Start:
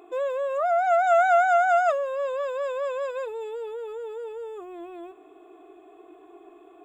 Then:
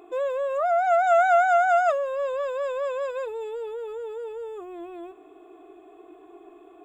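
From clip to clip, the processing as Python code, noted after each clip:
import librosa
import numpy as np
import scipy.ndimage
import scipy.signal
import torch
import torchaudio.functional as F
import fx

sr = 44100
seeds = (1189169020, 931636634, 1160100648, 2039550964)

y = fx.low_shelf(x, sr, hz=200.0, db=5.5)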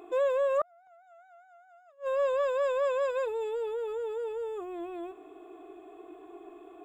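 y = fx.gate_flip(x, sr, shuts_db=-18.0, range_db=-38)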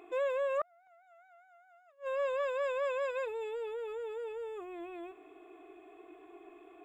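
y = fx.peak_eq(x, sr, hz=2200.0, db=10.0, octaves=0.85)
y = y * librosa.db_to_amplitude(-6.0)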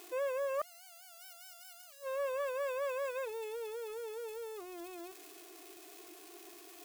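y = x + 0.5 * 10.0 ** (-37.5 / 20.0) * np.diff(np.sign(x), prepend=np.sign(x[:1]))
y = y * librosa.db_to_amplitude(-3.0)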